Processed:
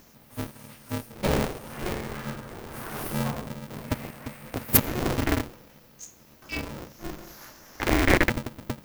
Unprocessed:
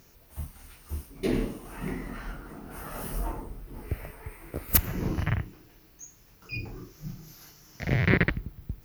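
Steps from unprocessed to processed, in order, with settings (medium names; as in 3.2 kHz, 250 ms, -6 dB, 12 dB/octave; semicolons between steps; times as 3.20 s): time-frequency box 6.99–7.90 s, 350–2000 Hz +8 dB; polarity switched at an audio rate 180 Hz; trim +2.5 dB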